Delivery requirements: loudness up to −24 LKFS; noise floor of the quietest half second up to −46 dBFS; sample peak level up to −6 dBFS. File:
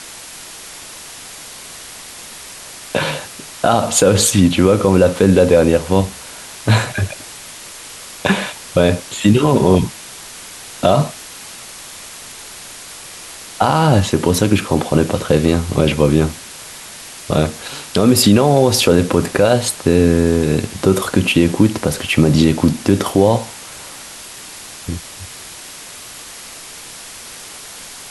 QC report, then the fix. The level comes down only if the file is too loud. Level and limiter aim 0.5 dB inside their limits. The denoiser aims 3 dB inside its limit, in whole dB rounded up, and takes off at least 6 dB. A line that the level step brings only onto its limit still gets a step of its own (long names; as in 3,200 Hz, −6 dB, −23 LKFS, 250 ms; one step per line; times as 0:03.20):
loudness −15.0 LKFS: out of spec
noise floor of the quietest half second −35 dBFS: out of spec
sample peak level −1.0 dBFS: out of spec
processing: broadband denoise 6 dB, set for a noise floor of −35 dBFS
level −9.5 dB